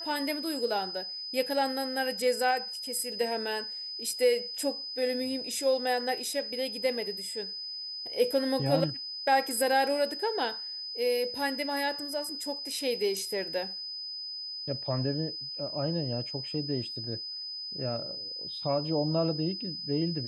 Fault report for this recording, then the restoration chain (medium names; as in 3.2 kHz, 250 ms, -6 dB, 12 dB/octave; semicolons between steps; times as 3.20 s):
whine 5 kHz -36 dBFS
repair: band-stop 5 kHz, Q 30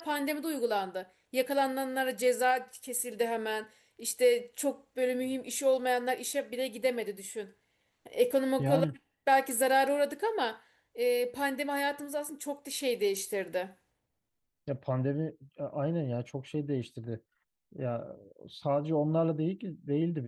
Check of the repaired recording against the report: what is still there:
nothing left